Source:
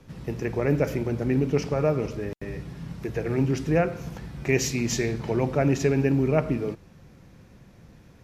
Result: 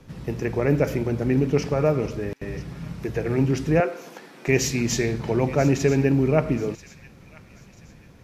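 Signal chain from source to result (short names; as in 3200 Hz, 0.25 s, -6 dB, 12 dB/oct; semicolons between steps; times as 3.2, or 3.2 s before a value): 3.8–4.48 HPF 290 Hz 24 dB/oct; on a send: thin delay 0.986 s, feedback 34%, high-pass 1800 Hz, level -15 dB; on the sum: gain +2.5 dB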